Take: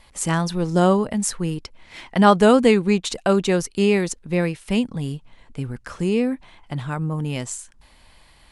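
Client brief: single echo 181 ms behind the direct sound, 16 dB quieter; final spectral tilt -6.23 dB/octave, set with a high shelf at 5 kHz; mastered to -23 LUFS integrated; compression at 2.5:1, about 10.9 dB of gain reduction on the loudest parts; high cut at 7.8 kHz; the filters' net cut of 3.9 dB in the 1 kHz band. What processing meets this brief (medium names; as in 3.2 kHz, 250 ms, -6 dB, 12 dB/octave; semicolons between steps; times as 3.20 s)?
low-pass 7.8 kHz; peaking EQ 1 kHz -5 dB; treble shelf 5 kHz -5.5 dB; compression 2.5:1, threshold -27 dBFS; delay 181 ms -16 dB; trim +6.5 dB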